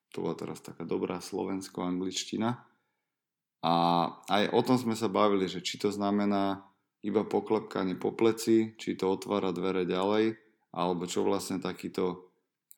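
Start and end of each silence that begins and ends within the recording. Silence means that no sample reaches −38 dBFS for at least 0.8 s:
0:02.55–0:03.63

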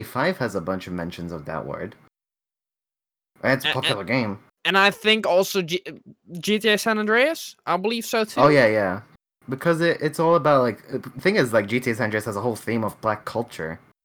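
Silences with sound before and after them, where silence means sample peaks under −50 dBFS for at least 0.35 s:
0:02.08–0:03.36

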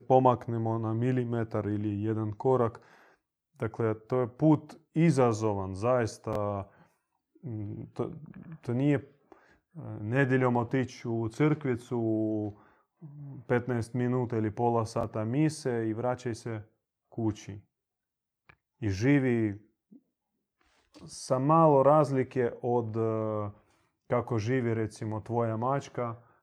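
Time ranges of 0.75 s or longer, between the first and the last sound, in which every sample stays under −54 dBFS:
0:17.61–0:18.49

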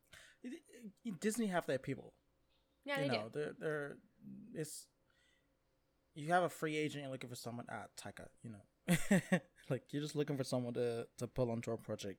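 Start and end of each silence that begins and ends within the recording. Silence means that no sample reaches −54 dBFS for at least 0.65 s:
0:02.09–0:02.86
0:04.84–0:06.16

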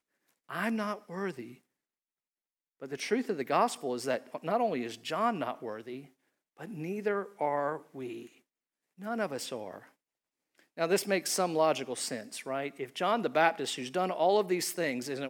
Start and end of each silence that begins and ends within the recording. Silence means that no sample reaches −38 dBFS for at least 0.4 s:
0:01.45–0:02.82
0:06.00–0:06.60
0:08.20–0:09.02
0:09.78–0:10.77

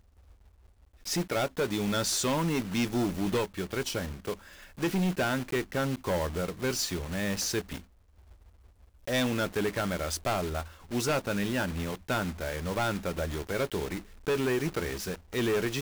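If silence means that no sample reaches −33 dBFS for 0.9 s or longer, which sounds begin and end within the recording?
0:01.07–0:07.76

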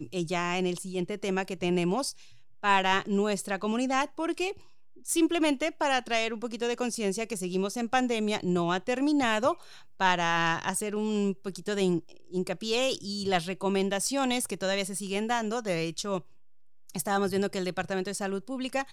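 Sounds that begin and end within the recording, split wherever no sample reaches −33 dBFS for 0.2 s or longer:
0:02.64–0:04.52
0:05.08–0:09.54
0:10.00–0:11.99
0:12.34–0:16.19

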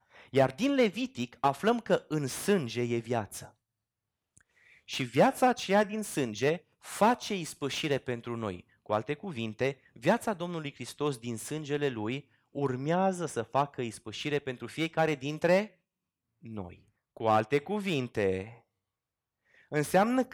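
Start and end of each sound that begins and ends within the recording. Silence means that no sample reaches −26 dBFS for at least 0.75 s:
0:04.95–0:15.62
0:16.58–0:18.41

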